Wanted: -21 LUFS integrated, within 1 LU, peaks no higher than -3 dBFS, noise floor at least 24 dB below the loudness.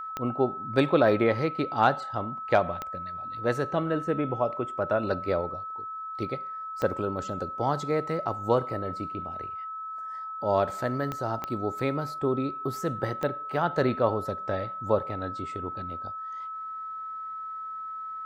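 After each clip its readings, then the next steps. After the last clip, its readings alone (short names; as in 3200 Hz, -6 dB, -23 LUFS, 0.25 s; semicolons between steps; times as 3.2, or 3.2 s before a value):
clicks 6; steady tone 1300 Hz; tone level -34 dBFS; loudness -29.5 LUFS; peak -9.0 dBFS; loudness target -21.0 LUFS
-> de-click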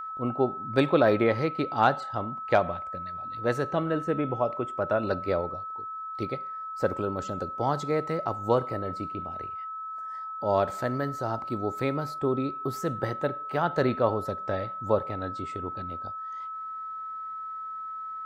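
clicks 0; steady tone 1300 Hz; tone level -34 dBFS
-> notch 1300 Hz, Q 30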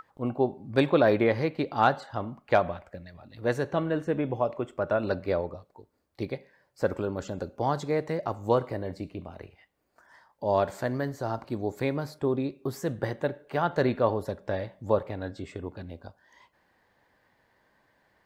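steady tone none; loudness -29.0 LUFS; peak -9.0 dBFS; loudness target -21.0 LUFS
-> gain +8 dB; limiter -3 dBFS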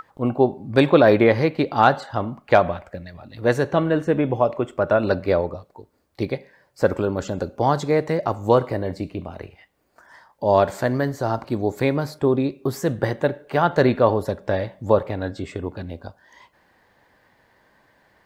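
loudness -21.5 LUFS; peak -3.0 dBFS; noise floor -63 dBFS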